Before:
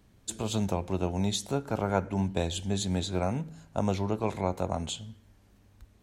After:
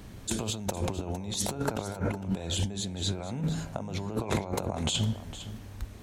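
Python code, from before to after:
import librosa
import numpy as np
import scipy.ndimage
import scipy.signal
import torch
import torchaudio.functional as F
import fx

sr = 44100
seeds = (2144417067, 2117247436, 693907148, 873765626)

y = fx.over_compress(x, sr, threshold_db=-40.0, ratio=-1.0)
y = y + 10.0 ** (-14.0 / 20.0) * np.pad(y, (int(458 * sr / 1000.0), 0))[:len(y)]
y = F.gain(torch.from_numpy(y), 7.0).numpy()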